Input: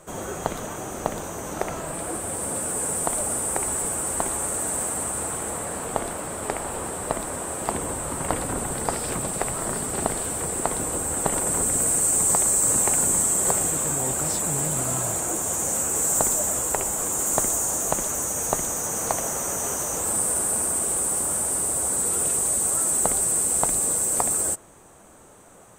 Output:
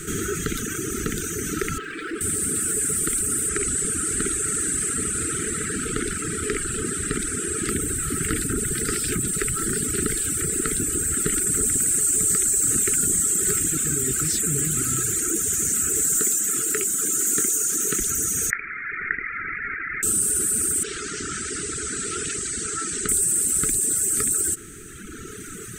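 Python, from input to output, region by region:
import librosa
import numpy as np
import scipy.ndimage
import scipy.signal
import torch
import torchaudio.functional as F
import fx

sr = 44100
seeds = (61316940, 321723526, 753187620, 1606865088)

y = fx.chain(x, sr, fx.bandpass_edges(low_hz=360.0, high_hz=2900.0),
    fx.clip_hard(threshold_db=-31.5), at=(1.78, 2.21))
y = fx.chain(y, sr, fx.lowpass(hz=9400.0, slope=12),
    fx.doubler(ms=49.0, db=-8.0), at=(3.49, 7.69))
y = fx.chain(y, sr, fx.highpass(hz=190.0, slope=12),
    fx.doubler(ms=23.0, db=-10.5), at=(16.17, 18.0))
y = fx.chain(y, sr, fx.highpass(hz=1000.0, slope=6),
    fx.freq_invert(carrier_hz=2600), at=(18.5, 20.03))
y = fx.chain(y, sr, fx.lowpass(hz=5800.0, slope=24),
    fx.low_shelf(hz=470.0, db=-8.0), at=(20.83, 23.09))
y = scipy.signal.sosfilt(scipy.signal.cheby1(5, 1.0, [440.0, 1300.0], 'bandstop', fs=sr, output='sos'), y)
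y = fx.dereverb_blind(y, sr, rt60_s=1.5)
y = fx.env_flatten(y, sr, amount_pct=50)
y = F.gain(torch.from_numpy(y), 3.0).numpy()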